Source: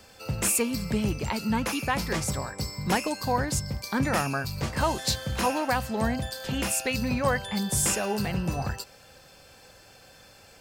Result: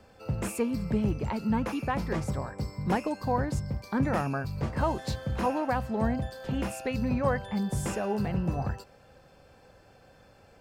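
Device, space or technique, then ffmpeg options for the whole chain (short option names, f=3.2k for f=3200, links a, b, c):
through cloth: -af "highshelf=f=2.2k:g=-17"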